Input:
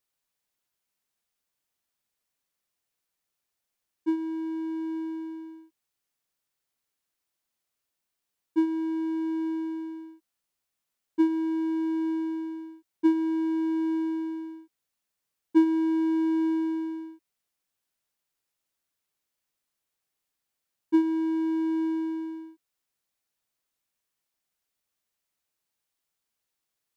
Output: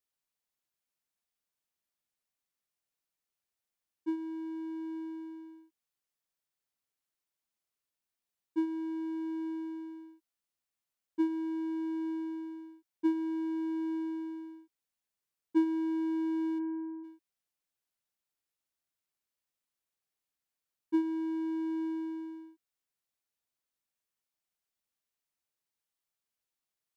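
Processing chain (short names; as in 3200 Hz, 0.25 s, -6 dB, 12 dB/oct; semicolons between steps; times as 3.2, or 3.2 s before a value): 16.58–17.03 LPF 2000 Hz -> 1300 Hz 24 dB/oct; gain -7 dB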